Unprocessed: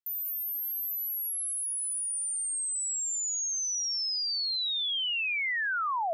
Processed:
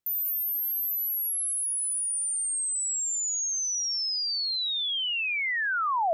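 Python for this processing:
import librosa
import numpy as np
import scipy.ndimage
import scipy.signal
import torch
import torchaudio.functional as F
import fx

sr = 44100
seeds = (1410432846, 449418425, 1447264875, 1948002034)

y = fx.low_shelf(x, sr, hz=500.0, db=10.0)
y = fx.rider(y, sr, range_db=10, speed_s=0.5)
y = y * librosa.db_to_amplitude(2.5)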